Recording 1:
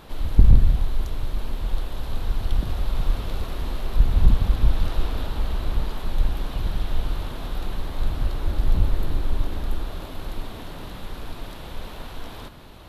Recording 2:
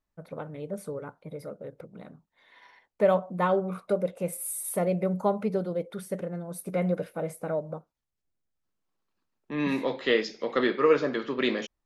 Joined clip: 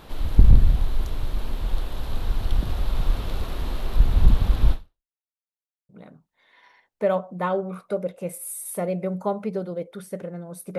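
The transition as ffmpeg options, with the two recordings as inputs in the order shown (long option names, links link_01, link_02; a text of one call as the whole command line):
ffmpeg -i cue0.wav -i cue1.wav -filter_complex "[0:a]apad=whole_dur=10.78,atrim=end=10.78,asplit=2[link_01][link_02];[link_01]atrim=end=5.12,asetpts=PTS-STARTPTS,afade=type=out:start_time=4.72:duration=0.4:curve=exp[link_03];[link_02]atrim=start=5.12:end=5.89,asetpts=PTS-STARTPTS,volume=0[link_04];[1:a]atrim=start=1.88:end=6.77,asetpts=PTS-STARTPTS,afade=type=in:duration=0.004:curve=hsin[link_05];[link_03][link_04][link_05]concat=n=3:v=0:a=1" out.wav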